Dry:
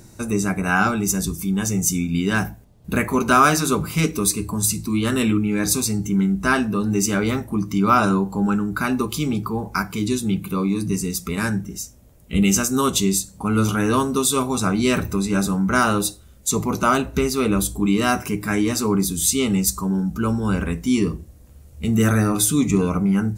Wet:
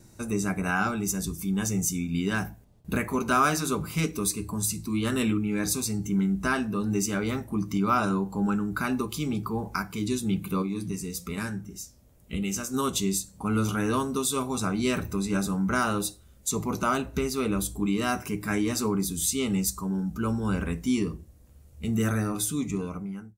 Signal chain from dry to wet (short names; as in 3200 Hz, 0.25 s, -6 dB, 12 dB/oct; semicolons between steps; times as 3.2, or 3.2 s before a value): ending faded out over 3.75 s; recorder AGC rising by 5.6 dB/s; gate with hold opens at -41 dBFS; 10.62–12.74 flange 1.1 Hz, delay 7.3 ms, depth 6.6 ms, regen +81%; gain -8 dB